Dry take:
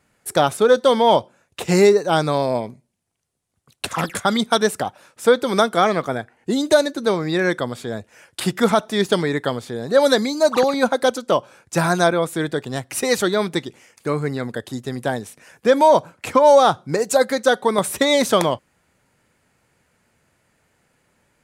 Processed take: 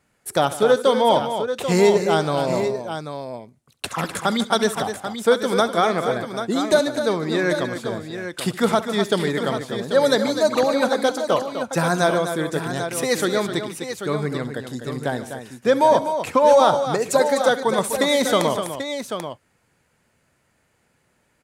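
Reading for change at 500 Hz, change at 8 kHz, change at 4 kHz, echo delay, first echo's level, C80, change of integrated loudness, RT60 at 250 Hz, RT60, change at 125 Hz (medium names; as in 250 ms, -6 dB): -1.5 dB, -1.5 dB, -1.5 dB, 68 ms, -17.0 dB, no reverb, -2.0 dB, no reverb, no reverb, -1.5 dB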